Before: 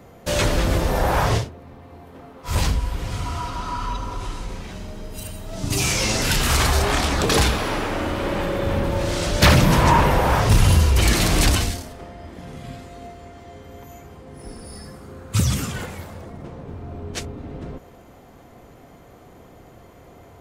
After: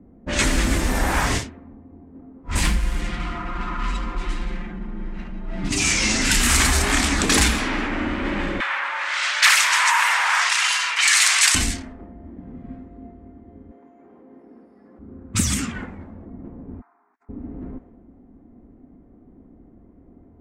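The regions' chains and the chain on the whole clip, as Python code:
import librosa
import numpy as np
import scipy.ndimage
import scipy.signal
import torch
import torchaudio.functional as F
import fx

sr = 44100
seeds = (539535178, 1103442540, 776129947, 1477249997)

y = fx.chain(x, sr, fx.comb(ms=5.7, depth=0.99),
    fx.running_max(window=5), at=(2.63, 5.69))
y = fx.chain(y, sr, fx.highpass(hz=1000.0, slope=24),
    fx.env_flatten(amount_pct=50), at=(8.6, 11.55))
y = fx.chain(y, sr, fx.highpass(hz=470.0, slope=12),
    fx.env_flatten(amount_pct=100), at=(13.71, 14.99))
y = fx.chain(y, sr, fx.highpass(hz=820.0, slope=24),
    fx.over_compress(threshold_db=-41.0, ratio=-0.5),
    fx.fixed_phaser(hz=1300.0, stages=4), at=(16.81, 17.29))
y = fx.low_shelf(y, sr, hz=80.0, db=6.0)
y = fx.env_lowpass(y, sr, base_hz=370.0, full_db=-14.0)
y = fx.graphic_eq_10(y, sr, hz=(125, 250, 500, 2000, 8000), db=(-10, 11, -7, 8, 11))
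y = y * 10.0 ** (-3.0 / 20.0)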